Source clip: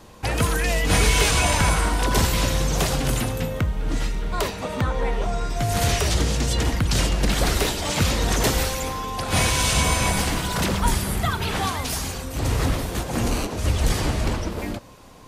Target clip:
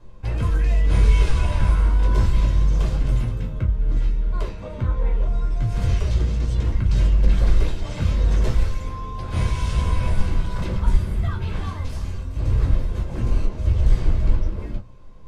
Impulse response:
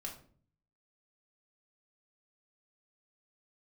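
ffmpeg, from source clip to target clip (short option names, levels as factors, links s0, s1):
-filter_complex "[0:a]aemphasis=mode=reproduction:type=bsi[s0];[1:a]atrim=start_sample=2205,afade=t=out:st=0.16:d=0.01,atrim=end_sample=7497,asetrate=83790,aresample=44100[s1];[s0][s1]afir=irnorm=-1:irlink=0,volume=0.75"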